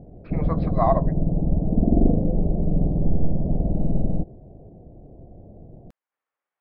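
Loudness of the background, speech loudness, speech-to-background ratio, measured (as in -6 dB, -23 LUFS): -24.0 LUFS, -26.0 LUFS, -2.0 dB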